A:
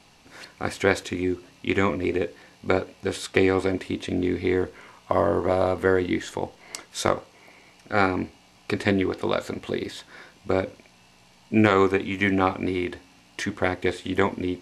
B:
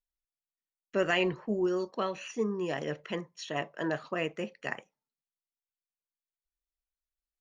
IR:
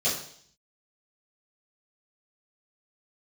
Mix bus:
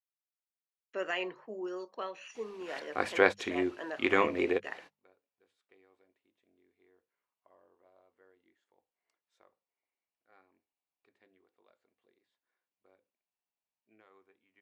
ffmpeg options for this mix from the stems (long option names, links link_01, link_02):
-filter_complex "[0:a]adelay=2350,volume=-1.5dB[link_01];[1:a]highpass=200,highshelf=frequency=6300:gain=8.5,volume=-6dB,asplit=2[link_02][link_03];[link_03]apad=whole_len=748247[link_04];[link_01][link_04]sidechaingate=range=-41dB:threshold=-54dB:ratio=16:detection=peak[link_05];[link_05][link_02]amix=inputs=2:normalize=0,bass=frequency=250:gain=-15,treble=frequency=4000:gain=-9,bandreject=frequency=50:width_type=h:width=6,bandreject=frequency=100:width_type=h:width=6,bandreject=frequency=150:width_type=h:width=6,bandreject=frequency=200:width_type=h:width=6"